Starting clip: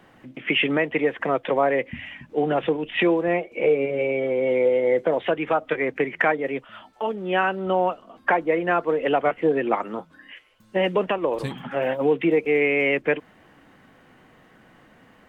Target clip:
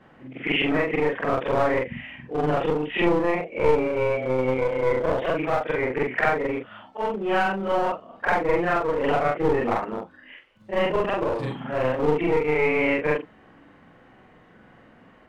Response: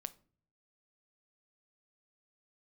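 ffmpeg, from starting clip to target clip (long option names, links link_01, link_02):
-filter_complex "[0:a]afftfilt=real='re':imag='-im':win_size=4096:overlap=0.75,aemphasis=mode=reproduction:type=75kf,acrossover=split=140|1500[link_01][link_02][link_03];[link_02]aeval=exprs='clip(val(0),-1,0.0266)':channel_layout=same[link_04];[link_01][link_04][link_03]amix=inputs=3:normalize=0,volume=6dB"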